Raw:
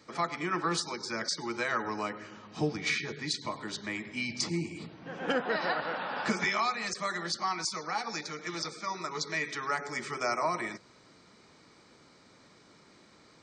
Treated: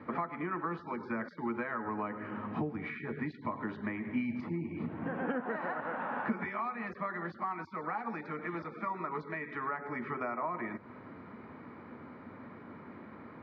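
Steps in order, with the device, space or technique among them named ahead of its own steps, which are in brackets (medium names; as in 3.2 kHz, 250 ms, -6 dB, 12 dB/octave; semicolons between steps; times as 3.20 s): bass amplifier (compression 5:1, threshold -44 dBFS, peak gain reduction 17.5 dB; cabinet simulation 67–2000 Hz, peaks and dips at 93 Hz +7 dB, 240 Hz +9 dB, 990 Hz +3 dB); trim +8.5 dB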